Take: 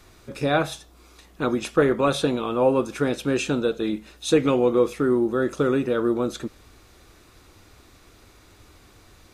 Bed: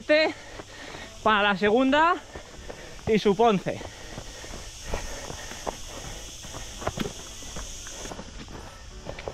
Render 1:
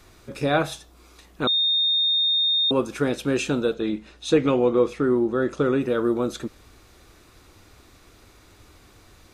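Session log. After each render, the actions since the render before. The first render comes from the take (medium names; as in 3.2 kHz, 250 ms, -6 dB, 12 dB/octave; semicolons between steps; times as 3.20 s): 1.47–2.71 s: bleep 3.67 kHz -18 dBFS; 3.74–5.81 s: distance through air 59 m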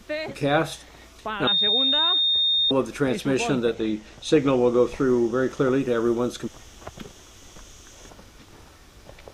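add bed -9.5 dB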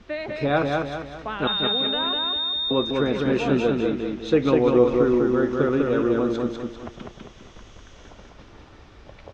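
distance through air 180 m; feedback delay 199 ms, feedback 43%, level -3 dB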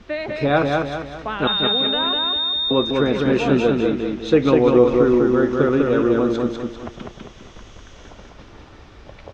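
trim +4 dB; peak limiter -3 dBFS, peak gain reduction 1 dB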